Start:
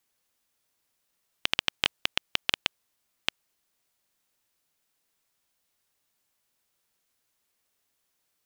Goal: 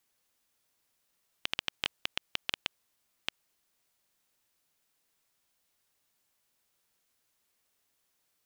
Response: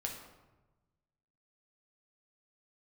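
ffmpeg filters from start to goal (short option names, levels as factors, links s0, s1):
-af "alimiter=limit=0.299:level=0:latency=1:release=51"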